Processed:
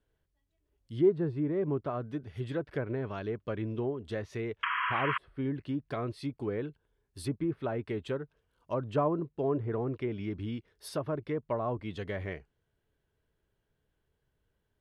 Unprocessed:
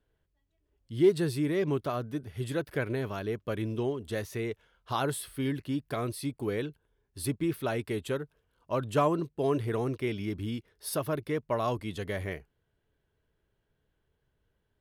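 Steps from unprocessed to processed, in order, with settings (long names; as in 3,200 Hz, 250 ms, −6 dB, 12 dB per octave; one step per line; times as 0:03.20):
sound drawn into the spectrogram noise, 0:04.63–0:05.18, 960–3,300 Hz −21 dBFS
treble cut that deepens with the level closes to 1,100 Hz, closed at −26 dBFS
level −2 dB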